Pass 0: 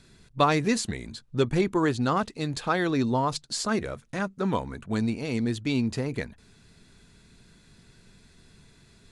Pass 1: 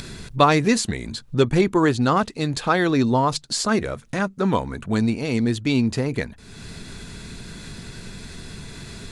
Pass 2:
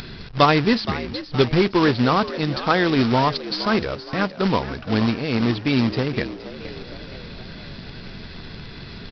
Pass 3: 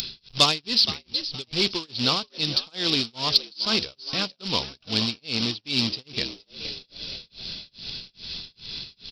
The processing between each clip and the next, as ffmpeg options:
-af "acompressor=mode=upward:threshold=-30dB:ratio=2.5,volume=6dB"
-filter_complex "[0:a]aresample=11025,acrusher=bits=2:mode=log:mix=0:aa=0.000001,aresample=44100,asplit=6[a][b][c][d][e][f];[b]adelay=470,afreqshift=82,volume=-14dB[g];[c]adelay=940,afreqshift=164,volume=-20.4dB[h];[d]adelay=1410,afreqshift=246,volume=-26.8dB[i];[e]adelay=1880,afreqshift=328,volume=-33.1dB[j];[f]adelay=2350,afreqshift=410,volume=-39.5dB[k];[a][g][h][i][j][k]amix=inputs=6:normalize=0"
-af "asoftclip=type=tanh:threshold=-5dB,tremolo=f=2.4:d=0.99,aexciter=amount=8.6:drive=5.8:freq=2.7k,volume=-7.5dB"

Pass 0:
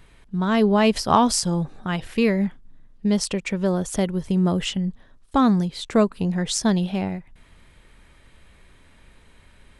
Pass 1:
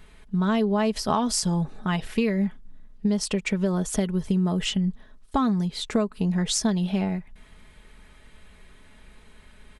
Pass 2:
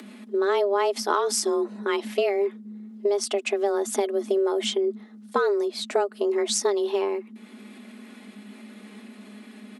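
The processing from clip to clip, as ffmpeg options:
-af "aecho=1:1:4.7:0.45,acompressor=threshold=-20dB:ratio=6"
-af "acompressor=mode=upward:threshold=-37dB:ratio=2.5,afreqshift=200"

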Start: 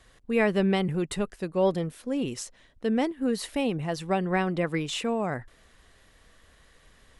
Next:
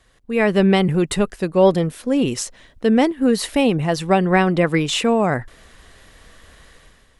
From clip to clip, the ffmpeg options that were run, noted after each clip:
-af "dynaudnorm=f=120:g=7:m=11dB"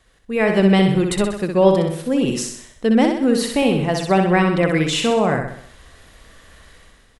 -af "aecho=1:1:63|126|189|252|315|378:0.562|0.287|0.146|0.0746|0.038|0.0194,volume=-1dB"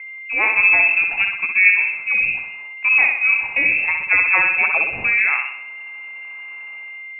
-af "aeval=exprs='val(0)+0.0282*sin(2*PI*700*n/s)':c=same,lowpass=f=2.4k:t=q:w=0.5098,lowpass=f=2.4k:t=q:w=0.6013,lowpass=f=2.4k:t=q:w=0.9,lowpass=f=2.4k:t=q:w=2.563,afreqshift=-2800" -ar 48000 -c:a libmp3lame -b:a 80k

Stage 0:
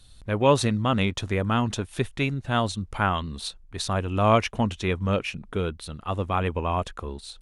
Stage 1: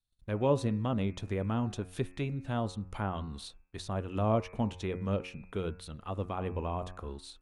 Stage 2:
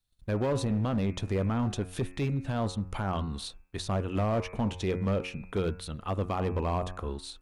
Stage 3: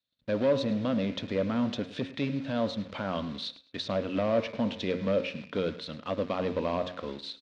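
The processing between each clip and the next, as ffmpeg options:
-filter_complex "[0:a]agate=range=-29dB:threshold=-44dB:ratio=16:detection=peak,bandreject=f=90.82:t=h:w=4,bandreject=f=181.64:t=h:w=4,bandreject=f=272.46:t=h:w=4,bandreject=f=363.28:t=h:w=4,bandreject=f=454.1:t=h:w=4,bandreject=f=544.92:t=h:w=4,bandreject=f=635.74:t=h:w=4,bandreject=f=726.56:t=h:w=4,bandreject=f=817.38:t=h:w=4,bandreject=f=908.2:t=h:w=4,bandreject=f=999.02:t=h:w=4,bandreject=f=1.08984k:t=h:w=4,bandreject=f=1.18066k:t=h:w=4,bandreject=f=1.27148k:t=h:w=4,bandreject=f=1.3623k:t=h:w=4,bandreject=f=1.45312k:t=h:w=4,bandreject=f=1.54394k:t=h:w=4,bandreject=f=1.63476k:t=h:w=4,bandreject=f=1.72558k:t=h:w=4,bandreject=f=1.8164k:t=h:w=4,bandreject=f=1.90722k:t=h:w=4,bandreject=f=1.99804k:t=h:w=4,bandreject=f=2.08886k:t=h:w=4,bandreject=f=2.17968k:t=h:w=4,bandreject=f=2.2705k:t=h:w=4,bandreject=f=2.36132k:t=h:w=4,bandreject=f=2.45214k:t=h:w=4,bandreject=f=2.54296k:t=h:w=4,bandreject=f=2.63378k:t=h:w=4,acrossover=split=840[a][b];[b]acompressor=threshold=-38dB:ratio=4[c];[a][c]amix=inputs=2:normalize=0,volume=-6.5dB"
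-af "alimiter=level_in=1dB:limit=-24dB:level=0:latency=1:release=10,volume=-1dB,asoftclip=type=hard:threshold=-29dB,volume=6dB"
-filter_complex "[0:a]asplit=2[a][b];[b]acrusher=bits=6:mix=0:aa=0.000001,volume=-4dB[c];[a][c]amix=inputs=2:normalize=0,highpass=210,equalizer=f=260:t=q:w=4:g=5,equalizer=f=380:t=q:w=4:g=-8,equalizer=f=560:t=q:w=4:g=7,equalizer=f=800:t=q:w=4:g=-9,equalizer=f=1.2k:t=q:w=4:g=-4,equalizer=f=3.7k:t=q:w=4:g=4,lowpass=f=4.8k:w=0.5412,lowpass=f=4.8k:w=1.3066,aecho=1:1:106|212:0.133|0.0347,volume=-2dB"

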